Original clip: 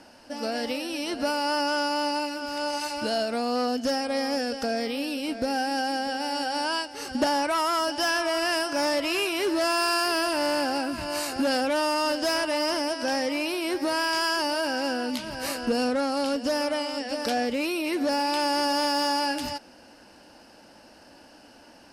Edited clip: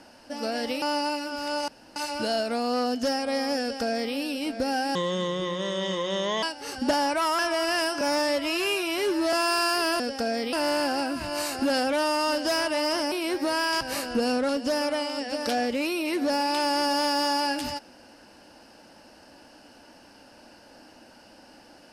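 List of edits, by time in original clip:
0.82–1.92 s: delete
2.78 s: insert room tone 0.28 s
4.43–4.96 s: copy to 10.30 s
5.77–6.76 s: speed 67%
7.72–8.13 s: delete
8.75–9.63 s: stretch 1.5×
12.89–13.52 s: delete
14.21–15.33 s: delete
16.01–16.28 s: delete

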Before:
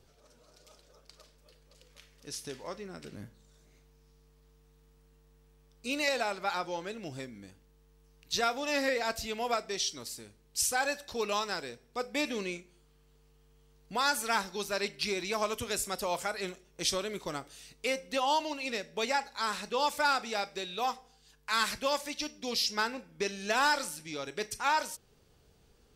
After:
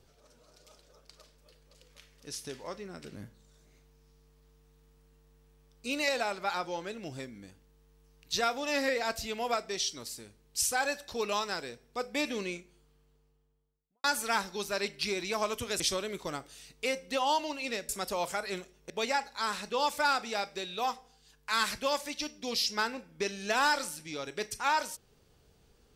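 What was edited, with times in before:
12.56–14.04 s: studio fade out
15.80–16.81 s: move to 18.90 s

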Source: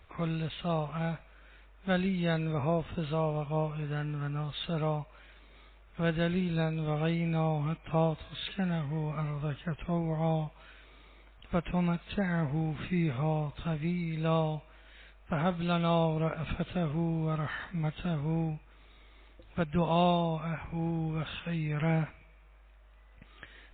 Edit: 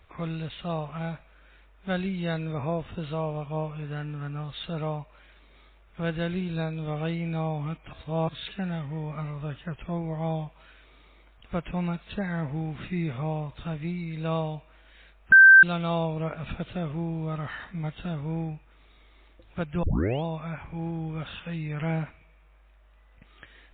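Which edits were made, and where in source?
7.93–8.29 s: reverse
15.32–15.63 s: bleep 1.56 kHz -8.5 dBFS
19.83 s: tape start 0.41 s

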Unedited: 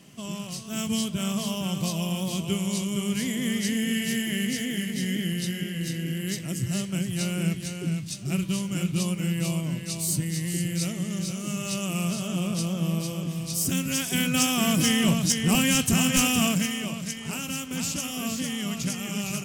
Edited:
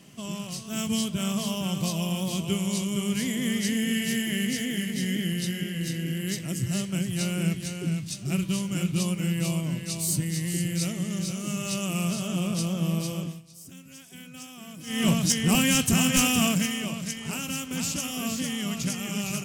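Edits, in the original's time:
13.20–15.08 s: dip -20 dB, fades 0.22 s

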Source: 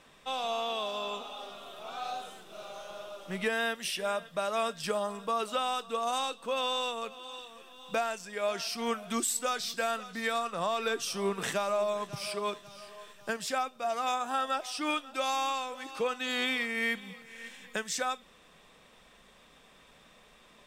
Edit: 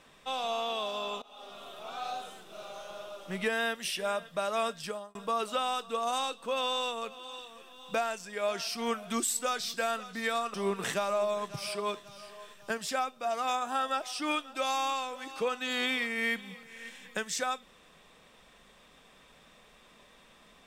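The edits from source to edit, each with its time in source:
1.22–1.61 s: fade in, from -20 dB
4.69–5.15 s: fade out linear
10.54–11.13 s: delete

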